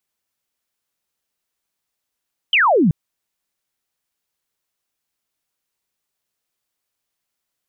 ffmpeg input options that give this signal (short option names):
-f lavfi -i "aevalsrc='0.282*clip(t/0.002,0,1)*clip((0.38-t)/0.002,0,1)*sin(2*PI*3200*0.38/log(140/3200)*(exp(log(140/3200)*t/0.38)-1))':d=0.38:s=44100"